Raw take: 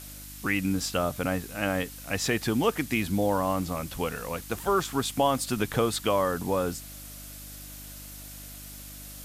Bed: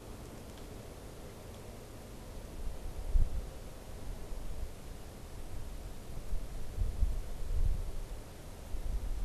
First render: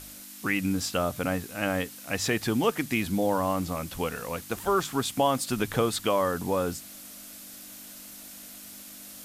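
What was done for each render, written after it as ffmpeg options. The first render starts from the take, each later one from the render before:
-af "bandreject=f=50:t=h:w=4,bandreject=f=100:t=h:w=4,bandreject=f=150:t=h:w=4"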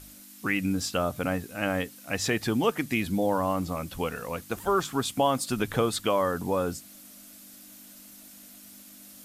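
-af "afftdn=nr=6:nf=-45"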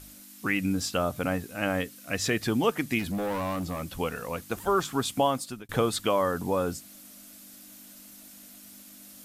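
-filter_complex "[0:a]asettb=1/sr,asplit=3[a][b][c];[a]atrim=end=1.814[d];[b]atrim=start=1.81:end=2.47,asetpts=PTS-STARTPTS,afade=t=in:d=0.004:c=qsin,afade=t=out:st=0.656:d=0.004:c=qsin,equalizer=f=850:t=o:w=0.22:g=-11.5[e];[c]atrim=start=2.466[f];[d][e]acrossfade=d=0.004:c1=hsin:c2=qsin[g];[g][f]acrossfade=d=0.004:c1=qsin:c2=hsin,asplit=3[h][i][j];[h]afade=t=out:st=2.98:d=0.02[k];[i]asoftclip=type=hard:threshold=-27dB,afade=t=in:st=2.98:d=0.02,afade=t=out:st=3.98:d=0.02[l];[j]afade=t=in:st=3.98:d=0.02[m];[k][l][m]amix=inputs=3:normalize=0,asplit=2[n][o];[n]atrim=end=5.69,asetpts=PTS-STARTPTS,afade=t=out:st=5.23:d=0.46[p];[o]atrim=start=5.69,asetpts=PTS-STARTPTS,afade=t=in:d=0.004:c=hsin[q];[p][q]concat=n=2:v=0:a=1"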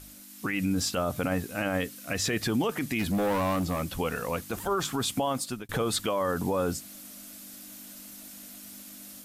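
-af "alimiter=limit=-22.5dB:level=0:latency=1:release=25,dynaudnorm=f=270:g=3:m=3.5dB"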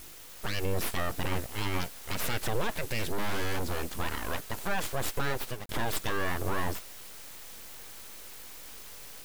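-af "aeval=exprs='abs(val(0))':c=same,acrusher=bits=7:mix=0:aa=0.000001"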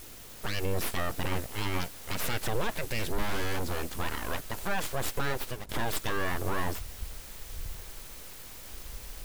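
-filter_complex "[1:a]volume=-8dB[a];[0:a][a]amix=inputs=2:normalize=0"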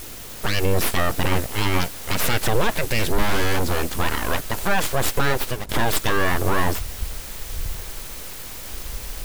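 -af "volume=10.5dB"

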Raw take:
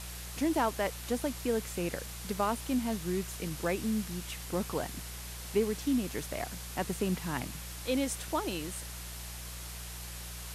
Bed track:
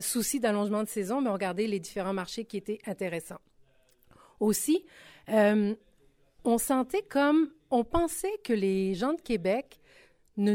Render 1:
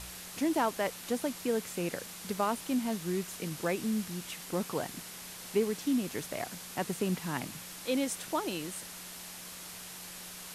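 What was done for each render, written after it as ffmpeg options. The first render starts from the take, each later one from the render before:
-af "bandreject=f=60:t=h:w=4,bandreject=f=120:t=h:w=4"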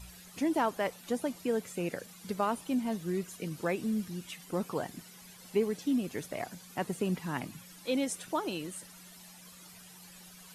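-af "afftdn=nr=13:nf=-46"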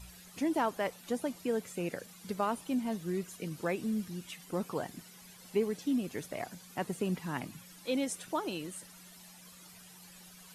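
-af "volume=-1.5dB"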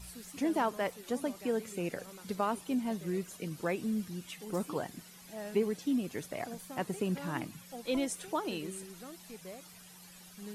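-filter_complex "[1:a]volume=-20dB[a];[0:a][a]amix=inputs=2:normalize=0"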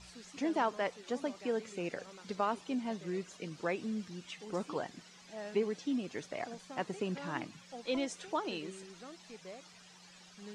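-af "lowpass=f=6.7k:w=0.5412,lowpass=f=6.7k:w=1.3066,lowshelf=f=190:g=-10"

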